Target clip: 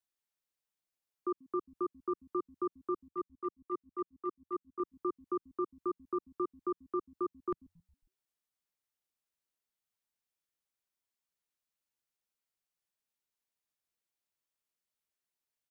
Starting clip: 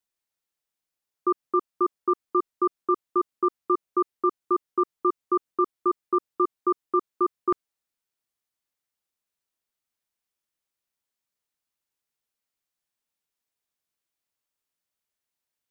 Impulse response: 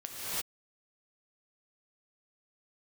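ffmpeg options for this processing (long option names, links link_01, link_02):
-filter_complex "[0:a]asettb=1/sr,asplit=3[link_01][link_02][link_03];[link_01]atrim=end=3.084[link_04];[link_02]atrim=start=3.08:end=4.8,asetpts=PTS-STARTPTS,afade=type=in:duration=0.004:curve=qsin,afade=type=out:start_time=1.716:duration=0.004:curve=qsin,agate=range=-13dB:threshold=-20dB:ratio=16:detection=peak[link_05];[link_03]atrim=start=4.796[link_06];[link_04][link_05]acrossfade=duration=0.004:curve1=hsin:curve2=qsin[link_07];[link_07][link_06]acrossfade=duration=0.004:curve1=qsin:curve2=hsin,acrossover=split=340[link_08][link_09];[link_08]asplit=5[link_10][link_11][link_12][link_13][link_14];[link_11]adelay=136,afreqshift=-96,volume=-21dB[link_15];[link_12]adelay=272,afreqshift=-192,volume=-26.4dB[link_16];[link_13]adelay=408,afreqshift=-288,volume=-31.7dB[link_17];[link_14]adelay=544,afreqshift=-384,volume=-37.1dB[link_18];[link_10][link_15][link_16][link_17][link_18]amix=inputs=5:normalize=0[link_19];[link_09]alimiter=level_in=1.5dB:limit=-24dB:level=0:latency=1:release=155,volume=-1.5dB[link_20];[link_19][link_20]amix=inputs=2:normalize=0,volume=-5.5dB"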